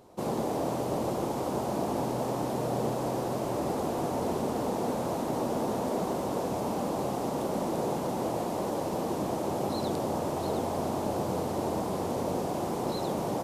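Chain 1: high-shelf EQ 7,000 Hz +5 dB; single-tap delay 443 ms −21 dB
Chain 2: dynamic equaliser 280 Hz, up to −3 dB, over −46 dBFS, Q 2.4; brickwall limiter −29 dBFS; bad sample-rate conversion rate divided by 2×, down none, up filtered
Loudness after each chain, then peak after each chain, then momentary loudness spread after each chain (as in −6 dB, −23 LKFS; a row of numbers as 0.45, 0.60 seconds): −31.0, −37.5 LKFS; −18.0, −28.0 dBFS; 1, 1 LU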